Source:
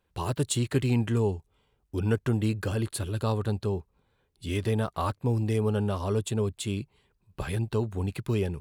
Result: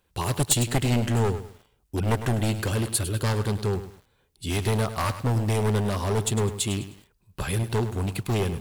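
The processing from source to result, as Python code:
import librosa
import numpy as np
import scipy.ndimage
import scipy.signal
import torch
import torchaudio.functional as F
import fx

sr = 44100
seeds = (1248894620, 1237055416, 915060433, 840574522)

y = np.minimum(x, 2.0 * 10.0 ** (-23.5 / 20.0) - x)
y = fx.high_shelf(y, sr, hz=4100.0, db=8.0)
y = fx.echo_crushed(y, sr, ms=103, feedback_pct=35, bits=8, wet_db=-11.5)
y = y * librosa.db_to_amplitude(3.5)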